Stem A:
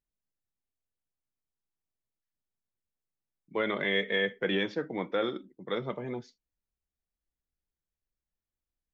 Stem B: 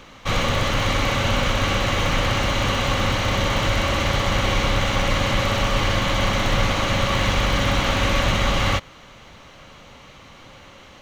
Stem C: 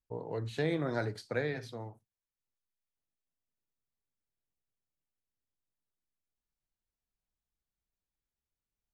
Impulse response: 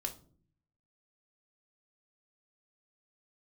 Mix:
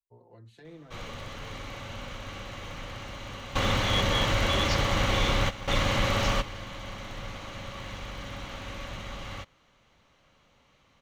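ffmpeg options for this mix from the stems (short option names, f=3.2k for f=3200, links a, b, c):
-filter_complex "[0:a]agate=range=-33dB:threshold=-44dB:ratio=3:detection=peak,aexciter=amount=13.9:drive=9.8:freq=3.9k,volume=-10.5dB,asplit=2[a][b];[1:a]adelay=650,volume=-5dB[c];[2:a]acrossover=split=240[d][e];[e]acompressor=threshold=-33dB:ratio=6[f];[d][f]amix=inputs=2:normalize=0,asplit=2[g][h];[h]adelay=5,afreqshift=-0.65[i];[g][i]amix=inputs=2:normalize=1,volume=-11.5dB[j];[b]apad=whole_len=514612[k];[c][k]sidechaingate=range=-14dB:threshold=-55dB:ratio=16:detection=peak[l];[a][l][j]amix=inputs=3:normalize=0"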